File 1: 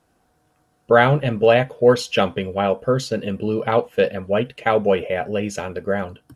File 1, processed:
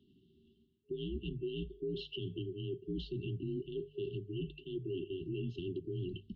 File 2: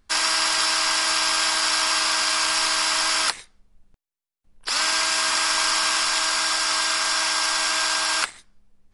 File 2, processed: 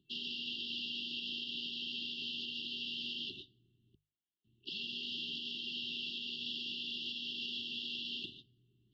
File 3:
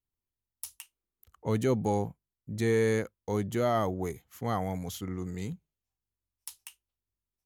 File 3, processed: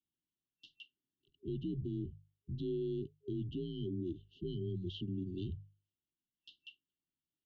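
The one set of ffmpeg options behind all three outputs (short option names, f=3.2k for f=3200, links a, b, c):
-af "highpass=f=170:t=q:w=0.5412,highpass=f=170:t=q:w=1.307,lowpass=f=3.5k:t=q:w=0.5176,lowpass=f=3.5k:t=q:w=0.7071,lowpass=f=3.5k:t=q:w=1.932,afreqshift=-80,areverse,acompressor=threshold=-31dB:ratio=16,areverse,bandreject=f=50:t=h:w=6,bandreject=f=100:t=h:w=6,bandreject=f=150:t=h:w=6,afftfilt=real='re*(1-between(b*sr/4096,410,2700))':imag='im*(1-between(b*sr/4096,410,2700))':win_size=4096:overlap=0.75,alimiter=level_in=10dB:limit=-24dB:level=0:latency=1:release=115,volume=-10dB,volume=3dB"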